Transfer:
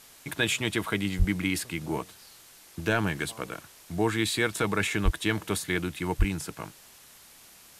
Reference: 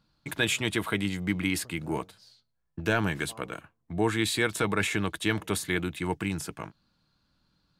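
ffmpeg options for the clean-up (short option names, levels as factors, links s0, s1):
-filter_complex "[0:a]asplit=3[s0][s1][s2];[s0]afade=t=out:st=1.18:d=0.02[s3];[s1]highpass=f=140:w=0.5412,highpass=f=140:w=1.3066,afade=t=in:st=1.18:d=0.02,afade=t=out:st=1.3:d=0.02[s4];[s2]afade=t=in:st=1.3:d=0.02[s5];[s3][s4][s5]amix=inputs=3:normalize=0,asplit=3[s6][s7][s8];[s6]afade=t=out:st=5.04:d=0.02[s9];[s7]highpass=f=140:w=0.5412,highpass=f=140:w=1.3066,afade=t=in:st=5.04:d=0.02,afade=t=out:st=5.16:d=0.02[s10];[s8]afade=t=in:st=5.16:d=0.02[s11];[s9][s10][s11]amix=inputs=3:normalize=0,asplit=3[s12][s13][s14];[s12]afade=t=out:st=6.18:d=0.02[s15];[s13]highpass=f=140:w=0.5412,highpass=f=140:w=1.3066,afade=t=in:st=6.18:d=0.02,afade=t=out:st=6.3:d=0.02[s16];[s14]afade=t=in:st=6.3:d=0.02[s17];[s15][s16][s17]amix=inputs=3:normalize=0,afftdn=nr=19:nf=-53"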